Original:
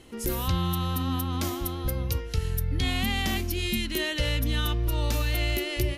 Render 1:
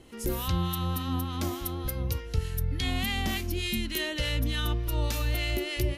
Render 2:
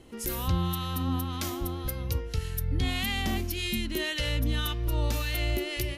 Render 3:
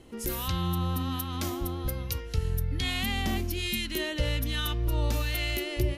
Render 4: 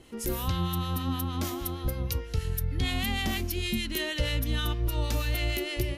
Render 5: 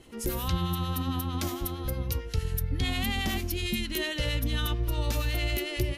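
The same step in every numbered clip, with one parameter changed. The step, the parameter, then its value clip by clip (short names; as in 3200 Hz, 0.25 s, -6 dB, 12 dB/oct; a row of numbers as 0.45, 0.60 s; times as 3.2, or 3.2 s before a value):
harmonic tremolo, rate: 3.4, 1.8, 1.2, 6.4, 11 Hz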